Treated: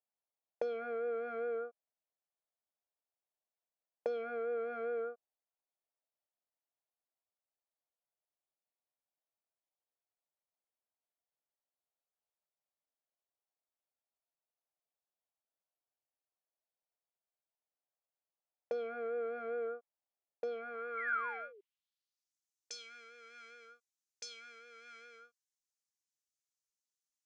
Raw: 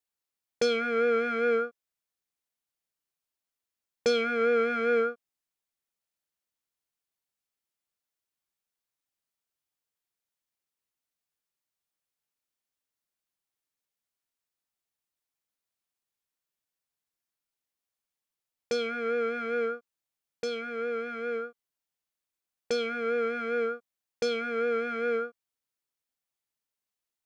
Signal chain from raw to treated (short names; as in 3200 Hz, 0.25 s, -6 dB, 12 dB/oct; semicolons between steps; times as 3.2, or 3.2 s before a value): compressor, threshold -30 dBFS, peak gain reduction 8.5 dB; painted sound fall, 20.97–21.61, 380–2300 Hz -37 dBFS; band-pass sweep 660 Hz -> 6400 Hz, 20.5–22.36; gain +2 dB